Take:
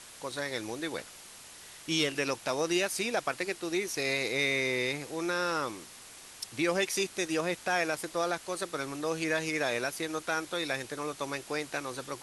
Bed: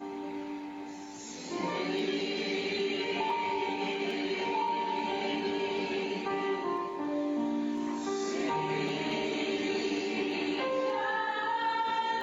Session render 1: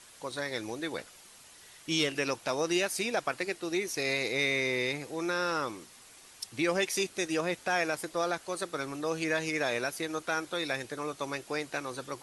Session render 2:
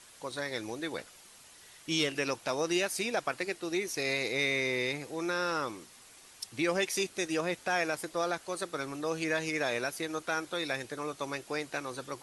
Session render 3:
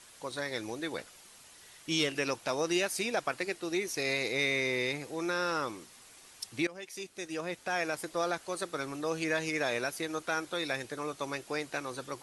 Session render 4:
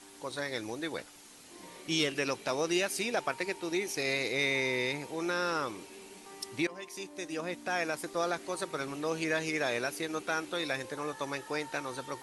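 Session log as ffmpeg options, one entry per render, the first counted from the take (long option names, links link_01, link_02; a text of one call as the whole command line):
ffmpeg -i in.wav -af "afftdn=noise_reduction=6:noise_floor=-50" out.wav
ffmpeg -i in.wav -af "volume=-1dB" out.wav
ffmpeg -i in.wav -filter_complex "[0:a]asplit=2[link_01][link_02];[link_01]atrim=end=6.67,asetpts=PTS-STARTPTS,afade=type=out:start_time=6.666:duration=0.004:curve=hsin:silence=0.105925[link_03];[link_02]atrim=start=6.67,asetpts=PTS-STARTPTS,afade=type=in:duration=1.47:silence=0.105925[link_04];[link_03][link_04]concat=n=2:v=0:a=1" out.wav
ffmpeg -i in.wav -i bed.wav -filter_complex "[1:a]volume=-18dB[link_01];[0:a][link_01]amix=inputs=2:normalize=0" out.wav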